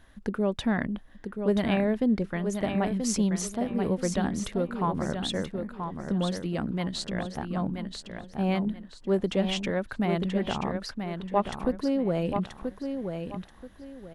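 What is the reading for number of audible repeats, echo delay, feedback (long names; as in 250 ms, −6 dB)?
3, 981 ms, 27%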